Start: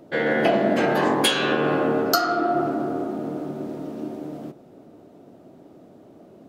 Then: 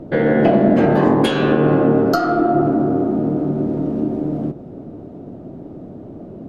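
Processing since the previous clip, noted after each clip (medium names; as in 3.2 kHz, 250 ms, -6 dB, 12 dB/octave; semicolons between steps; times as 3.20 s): tilt EQ -4 dB/octave; in parallel at +3 dB: compression, threshold -25 dBFS, peak gain reduction 13.5 dB; on the sum: trim -1 dB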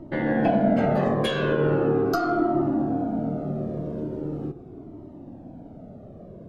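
Shepard-style flanger falling 0.4 Hz; trim -2.5 dB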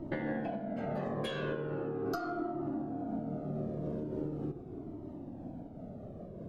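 compression, threshold -31 dBFS, peak gain reduction 14 dB; random flutter of the level, depth 55%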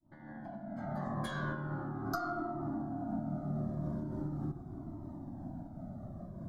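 fade-in on the opening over 1.26 s; static phaser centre 1.1 kHz, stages 4; trim +4 dB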